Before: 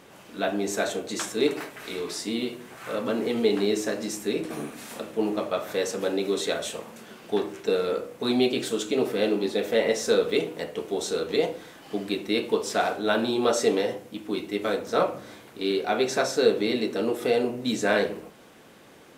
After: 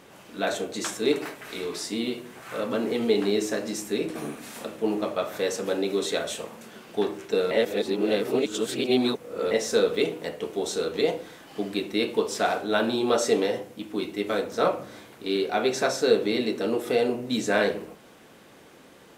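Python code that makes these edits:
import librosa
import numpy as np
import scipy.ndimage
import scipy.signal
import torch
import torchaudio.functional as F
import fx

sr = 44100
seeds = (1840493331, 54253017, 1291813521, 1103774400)

y = fx.edit(x, sr, fx.cut(start_s=0.47, length_s=0.35),
    fx.reverse_span(start_s=7.86, length_s=2.0), tone=tone)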